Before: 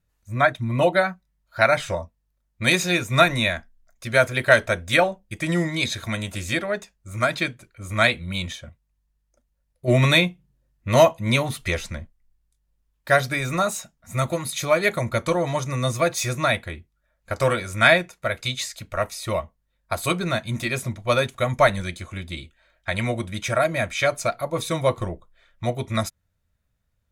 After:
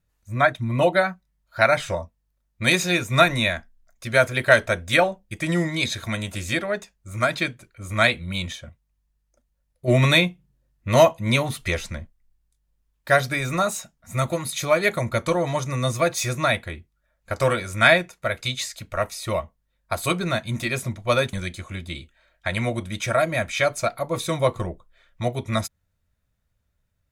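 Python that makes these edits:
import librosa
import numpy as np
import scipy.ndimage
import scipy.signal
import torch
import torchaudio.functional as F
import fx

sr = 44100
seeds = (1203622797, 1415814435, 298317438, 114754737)

y = fx.edit(x, sr, fx.cut(start_s=21.33, length_s=0.42), tone=tone)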